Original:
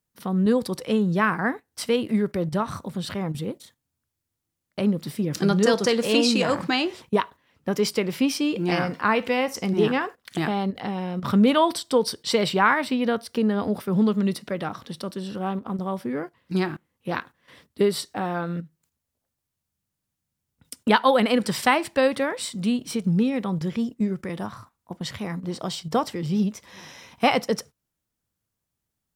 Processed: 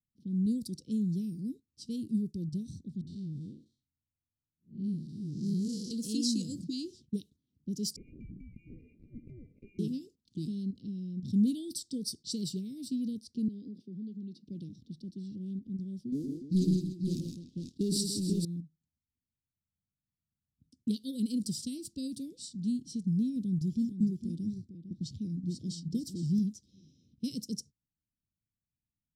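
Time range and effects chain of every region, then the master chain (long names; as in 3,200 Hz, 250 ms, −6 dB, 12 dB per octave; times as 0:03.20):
0:03.01–0:05.91: spectrum smeared in time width 156 ms + all-pass dispersion highs, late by 61 ms, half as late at 640 Hz
0:07.96–0:09.79: parametric band 1,800 Hz +10 dB 2.1 octaves + downward compressor 10 to 1, threshold −23 dBFS + voice inversion scrambler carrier 2,600 Hz
0:13.48–0:14.46: downward compressor 5 to 1, threshold −26 dBFS + three-way crossover with the lows and the highs turned down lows −22 dB, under 190 Hz, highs −13 dB, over 5,600 Hz
0:16.12–0:18.45: Bessel low-pass filter 8,800 Hz + leveller curve on the samples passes 2 + multi-tap delay 116/159/291/489 ms −6/−5.5/−12/−5 dB
0:23.36–0:26.39: low-shelf EQ 480 Hz +4.5 dB + single-tap delay 454 ms −10 dB
whole clip: dynamic equaliser 7,100 Hz, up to +3 dB, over −39 dBFS, Q 0.72; low-pass that shuts in the quiet parts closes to 1,700 Hz, open at −19 dBFS; inverse Chebyshev band-stop filter 790–1,800 Hz, stop band 70 dB; level −7.5 dB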